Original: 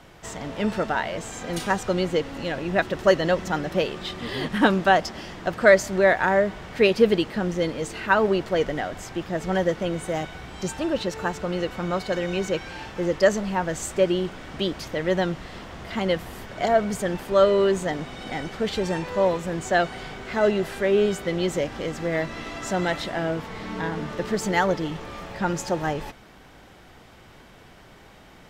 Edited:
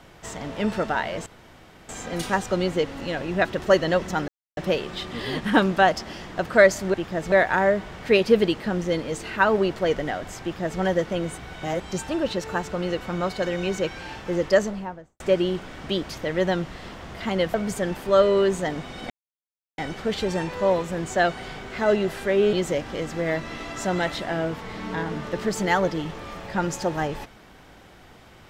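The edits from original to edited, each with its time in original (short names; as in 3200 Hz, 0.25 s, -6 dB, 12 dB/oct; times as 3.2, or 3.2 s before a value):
1.26 insert room tone 0.63 s
3.65 insert silence 0.29 s
9.12–9.5 copy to 6.02
10.08–10.5 reverse
13.18–13.9 studio fade out
16.24–16.77 cut
18.33 insert silence 0.68 s
21.08–21.39 cut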